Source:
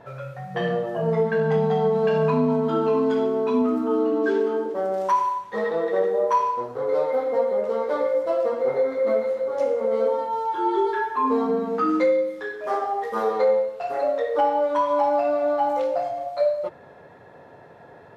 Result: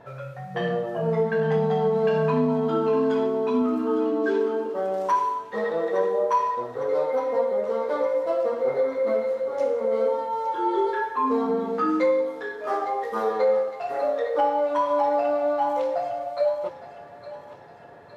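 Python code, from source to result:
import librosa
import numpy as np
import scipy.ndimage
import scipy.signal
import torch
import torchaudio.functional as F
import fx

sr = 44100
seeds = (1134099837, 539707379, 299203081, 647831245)

p1 = x + fx.echo_thinned(x, sr, ms=859, feedback_pct=59, hz=920.0, wet_db=-11.5, dry=0)
y = F.gain(torch.from_numpy(p1), -1.5).numpy()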